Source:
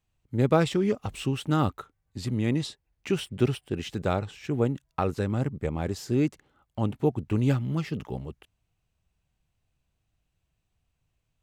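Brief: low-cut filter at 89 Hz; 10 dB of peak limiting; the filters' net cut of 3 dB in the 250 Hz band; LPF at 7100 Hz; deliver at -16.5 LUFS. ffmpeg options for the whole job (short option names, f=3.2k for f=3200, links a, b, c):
-af "highpass=89,lowpass=7.1k,equalizer=f=250:t=o:g=-4,volume=16dB,alimiter=limit=-3.5dB:level=0:latency=1"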